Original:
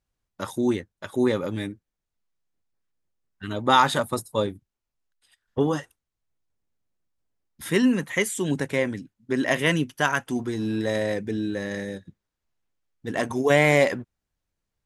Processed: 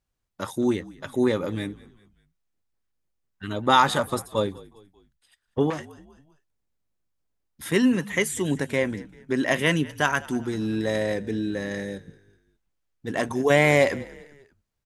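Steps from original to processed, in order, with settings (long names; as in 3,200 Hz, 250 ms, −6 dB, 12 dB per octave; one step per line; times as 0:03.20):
on a send: echo with shifted repeats 196 ms, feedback 45%, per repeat −50 Hz, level −21 dB
0:05.70–0:07.72: on the sum: saturating transformer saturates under 1,500 Hz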